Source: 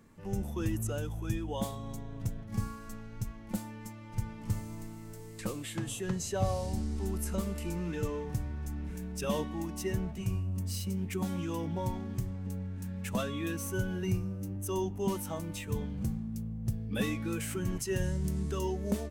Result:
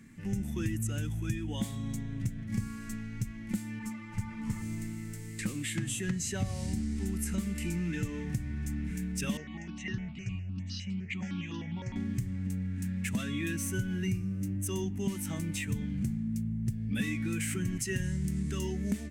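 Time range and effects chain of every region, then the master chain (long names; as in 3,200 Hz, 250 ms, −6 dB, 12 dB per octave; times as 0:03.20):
0:03.79–0:04.62: parametric band 1,000 Hz +14 dB 0.84 octaves + string-ensemble chorus
0:09.37–0:11.96: Butterworth low-pass 6,500 Hz 48 dB per octave + low-shelf EQ 170 Hz −10 dB + step-sequenced phaser 9.8 Hz 970–2,200 Hz
whole clip: octave-band graphic EQ 125/250/500/1,000/2,000/8,000 Hz +6/+9/−9/−8/+12/+7 dB; downward compressor 3 to 1, threshold −30 dBFS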